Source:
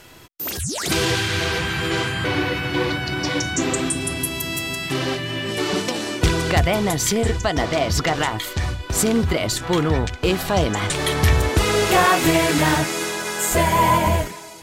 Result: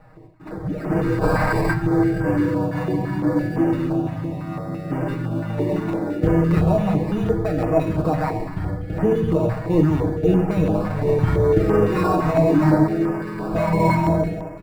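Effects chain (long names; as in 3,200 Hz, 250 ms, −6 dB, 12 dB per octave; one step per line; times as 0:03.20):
high-frequency loss of the air 86 metres
on a send at −4.5 dB: convolution reverb RT60 1.3 s, pre-delay 23 ms
on the sum: gain on a spectral selection 0:01.23–0:01.73, 910–8,000 Hz +10 dB
sample-rate reduction 3,200 Hz, jitter 0%
drawn EQ curve 510 Hz 0 dB, 2,000 Hz −11 dB, 5,400 Hz −23 dB
flanger 0.53 Hz, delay 8.5 ms, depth 2.6 ms, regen +55%
mains-hum notches 50/100 Hz
comb filter 6.4 ms, depth 87%
notch on a step sequencer 5.9 Hz 360–3,900 Hz
level +4 dB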